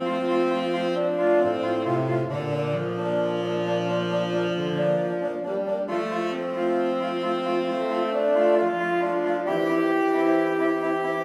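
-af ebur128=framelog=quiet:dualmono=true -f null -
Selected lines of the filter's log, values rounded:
Integrated loudness:
  I:         -21.3 LUFS
  Threshold: -31.3 LUFS
Loudness range:
  LRA:         3.1 LU
  Threshold: -41.6 LUFS
  LRA low:   -22.9 LUFS
  LRA high:  -19.8 LUFS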